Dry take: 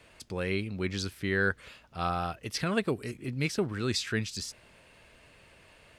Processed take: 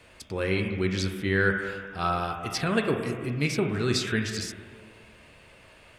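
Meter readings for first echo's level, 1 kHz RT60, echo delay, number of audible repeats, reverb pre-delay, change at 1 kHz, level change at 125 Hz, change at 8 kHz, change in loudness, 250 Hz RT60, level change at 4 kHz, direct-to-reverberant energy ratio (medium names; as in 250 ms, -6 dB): no echo, 1.8 s, no echo, no echo, 8 ms, +4.0 dB, +4.5 dB, +2.5 dB, +4.0 dB, 1.8 s, +3.0 dB, 7.0 dB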